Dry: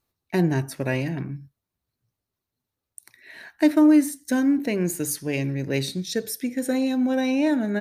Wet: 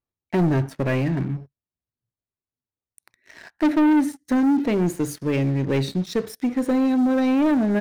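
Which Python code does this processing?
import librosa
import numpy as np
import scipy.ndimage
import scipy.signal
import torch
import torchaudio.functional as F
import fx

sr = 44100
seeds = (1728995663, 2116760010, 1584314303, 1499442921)

y = fx.lowpass(x, sr, hz=1600.0, slope=6)
y = fx.leveller(y, sr, passes=3)
y = y * librosa.db_to_amplitude(-5.0)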